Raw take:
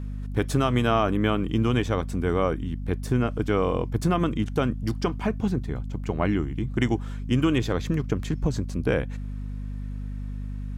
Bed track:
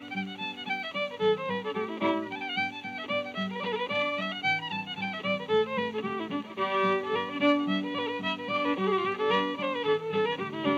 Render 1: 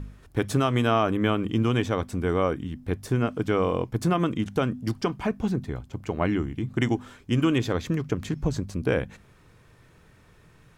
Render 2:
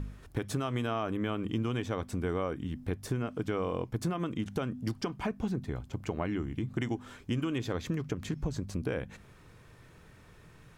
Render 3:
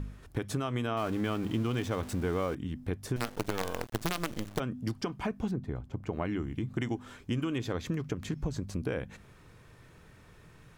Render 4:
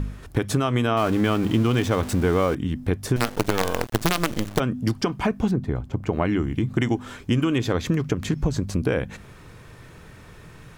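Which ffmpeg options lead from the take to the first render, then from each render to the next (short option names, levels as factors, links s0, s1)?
-af "bandreject=f=50:t=h:w=4,bandreject=f=100:t=h:w=4,bandreject=f=150:t=h:w=4,bandreject=f=200:t=h:w=4,bandreject=f=250:t=h:w=4"
-af "alimiter=limit=0.2:level=0:latency=1:release=317,acompressor=threshold=0.0251:ratio=2.5"
-filter_complex "[0:a]asettb=1/sr,asplit=3[s0][s1][s2];[s0]atrim=end=0.974[s3];[s1]atrim=start=0.97:end=2.55,asetpts=PTS-STARTPTS,afade=t=in:d=0.004:c=qsin,afade=t=out:st=1.576:d=0.004:c=qsin,aeval=exprs='val(0)+0.5*0.00944*sgn(val(0))':c=same[s4];[s2]atrim=start=2.546[s5];[s3][s4]acrossfade=d=0.004:c1=hsin:c2=qsin[s6];[s6][s5]acrossfade=d=0.004:c1=qsin:c2=hsin,asettb=1/sr,asplit=3[s7][s8][s9];[s7]atrim=end=3.164[s10];[s8]atrim=start=3.16:end=4.6,asetpts=PTS-STARTPTS,afade=t=in:d=0.004:c=qsin,afade=t=out:st=1.436:d=0.004:c=qsin,acrusher=bits=5:dc=4:mix=0:aa=0.000001[s11];[s9]atrim=start=4.596[s12];[s10][s11]acrossfade=d=0.004:c1=hsin:c2=qsin[s13];[s13][s12]acrossfade=d=0.004:c1=qsin:c2=hsin,asettb=1/sr,asplit=3[s14][s15][s16];[s14]atrim=end=5.514[s17];[s15]atrim=start=5.51:end=6.13,asetpts=PTS-STARTPTS,afade=t=in:d=0.004:c=qsin,afade=t=out:st=0.616:d=0.004:c=qsin,highshelf=f=2300:g=-11[s18];[s16]atrim=start=6.126[s19];[s17][s18]acrossfade=d=0.004:c1=hsin:c2=qsin[s20];[s20][s19]acrossfade=d=0.004:c1=qsin:c2=hsin"
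-af "volume=3.35"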